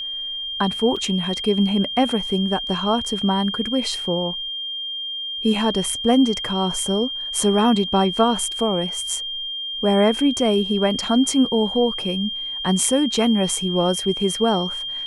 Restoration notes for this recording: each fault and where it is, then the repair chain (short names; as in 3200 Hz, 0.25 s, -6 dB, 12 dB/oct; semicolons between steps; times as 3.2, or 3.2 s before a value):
tone 3200 Hz -26 dBFS
0.96–0.97 gap 5.4 ms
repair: notch 3200 Hz, Q 30; interpolate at 0.96, 5.4 ms